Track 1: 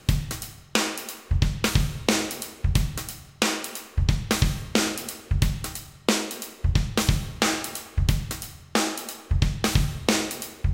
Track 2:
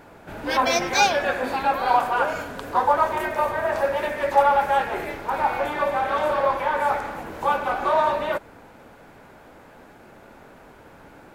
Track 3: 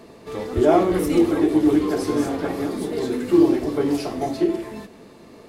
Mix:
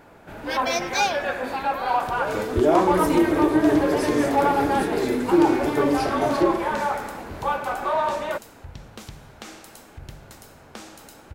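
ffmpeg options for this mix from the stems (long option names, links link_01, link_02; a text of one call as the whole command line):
ffmpeg -i stem1.wav -i stem2.wav -i stem3.wav -filter_complex "[0:a]acompressor=threshold=-42dB:ratio=2,adelay=2000,volume=-5.5dB[link_01];[1:a]acontrast=70,volume=-9dB[link_02];[2:a]acompressor=threshold=-22dB:ratio=1.5,adelay=2000,volume=1.5dB[link_03];[link_01][link_02][link_03]amix=inputs=3:normalize=0" out.wav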